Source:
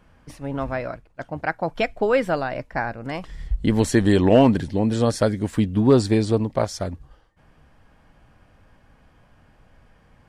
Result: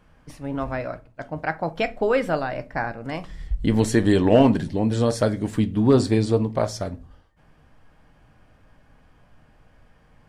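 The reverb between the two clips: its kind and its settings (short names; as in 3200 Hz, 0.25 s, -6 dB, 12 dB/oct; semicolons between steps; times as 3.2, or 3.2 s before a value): shoebox room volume 190 m³, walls furnished, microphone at 0.44 m; gain -1.5 dB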